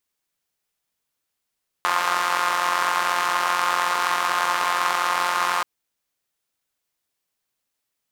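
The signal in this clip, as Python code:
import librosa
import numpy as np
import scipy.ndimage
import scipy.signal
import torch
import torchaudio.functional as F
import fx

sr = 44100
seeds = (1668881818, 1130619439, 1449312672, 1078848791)

y = fx.engine_four(sr, seeds[0], length_s=3.78, rpm=5300, resonances_hz=(1100.0,))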